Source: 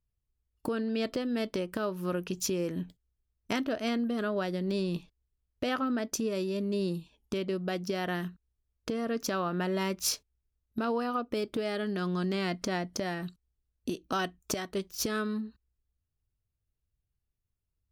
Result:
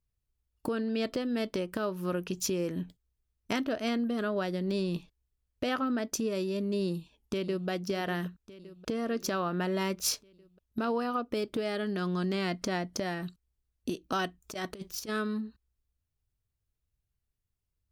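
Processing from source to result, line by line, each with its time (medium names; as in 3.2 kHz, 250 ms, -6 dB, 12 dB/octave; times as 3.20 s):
6.85–7.68 s: echo throw 580 ms, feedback 65%, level -14 dB
14.42–15.09 s: compressor with a negative ratio -37 dBFS, ratio -0.5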